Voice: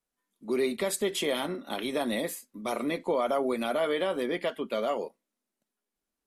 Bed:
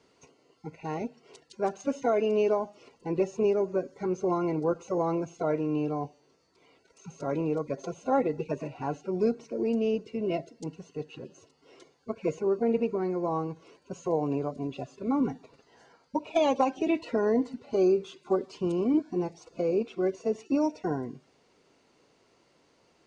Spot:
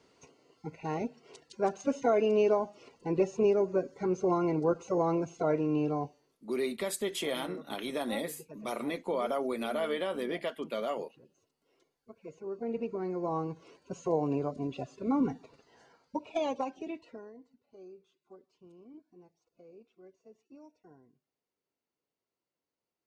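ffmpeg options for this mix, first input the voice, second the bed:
-filter_complex "[0:a]adelay=6000,volume=0.596[s0];[1:a]volume=5.96,afade=t=out:st=5.97:d=0.44:silence=0.141254,afade=t=in:st=12.29:d=1.31:silence=0.158489,afade=t=out:st=15.45:d=1.88:silence=0.0501187[s1];[s0][s1]amix=inputs=2:normalize=0"

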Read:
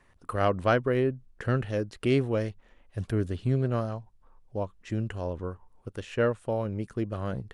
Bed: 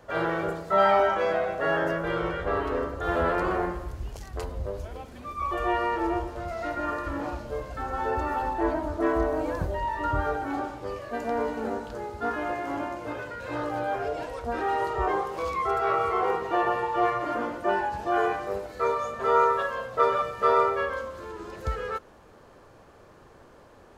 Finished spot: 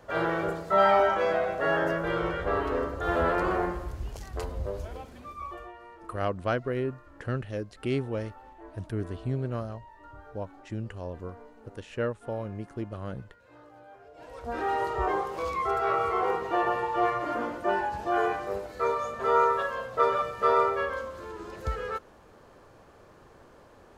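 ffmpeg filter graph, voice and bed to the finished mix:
-filter_complex "[0:a]adelay=5800,volume=0.596[s0];[1:a]volume=10,afade=t=out:st=4.9:d=0.82:silence=0.0841395,afade=t=in:st=14.13:d=0.51:silence=0.0944061[s1];[s0][s1]amix=inputs=2:normalize=0"

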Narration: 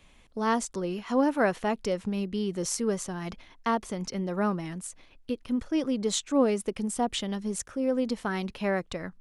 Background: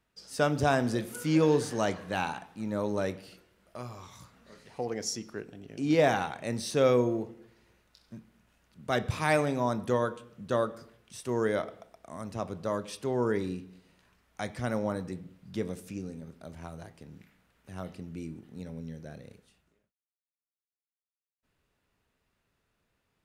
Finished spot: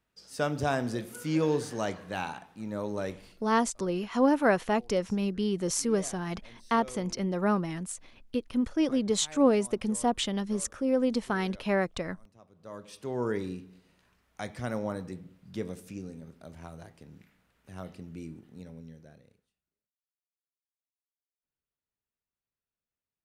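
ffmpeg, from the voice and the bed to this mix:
-filter_complex "[0:a]adelay=3050,volume=1.12[s0];[1:a]volume=7.5,afade=t=out:st=3.13:d=0.45:silence=0.105925,afade=t=in:st=12.54:d=0.73:silence=0.0944061,afade=t=out:st=18.32:d=1.22:silence=0.1[s1];[s0][s1]amix=inputs=2:normalize=0"

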